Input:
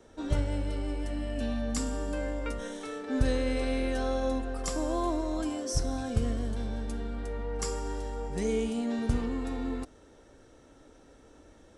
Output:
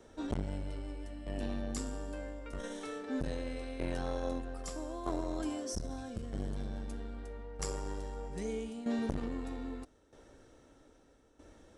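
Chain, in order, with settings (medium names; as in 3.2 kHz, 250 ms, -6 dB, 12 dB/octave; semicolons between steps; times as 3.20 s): tremolo saw down 0.79 Hz, depth 75%; transformer saturation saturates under 490 Hz; trim -1 dB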